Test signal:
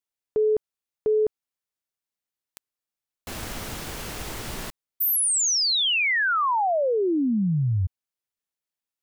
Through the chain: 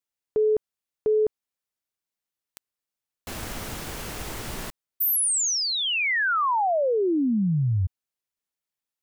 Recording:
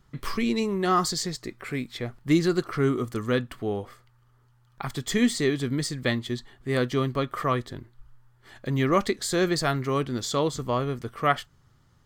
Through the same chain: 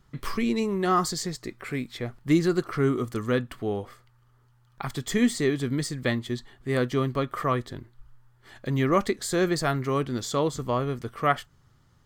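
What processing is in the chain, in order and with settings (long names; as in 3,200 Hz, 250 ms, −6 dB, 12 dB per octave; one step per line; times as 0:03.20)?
dynamic equaliser 4,000 Hz, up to −4 dB, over −40 dBFS, Q 0.94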